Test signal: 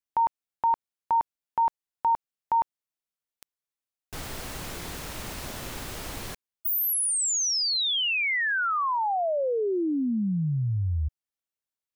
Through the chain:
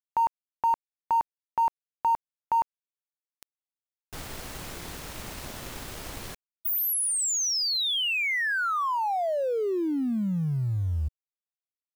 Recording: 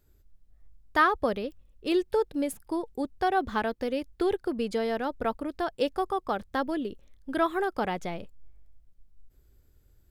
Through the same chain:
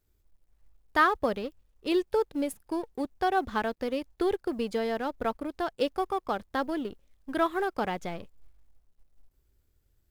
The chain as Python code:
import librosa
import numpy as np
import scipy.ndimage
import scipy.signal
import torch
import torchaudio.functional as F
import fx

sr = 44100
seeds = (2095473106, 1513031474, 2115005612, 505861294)

y = fx.law_mismatch(x, sr, coded='A')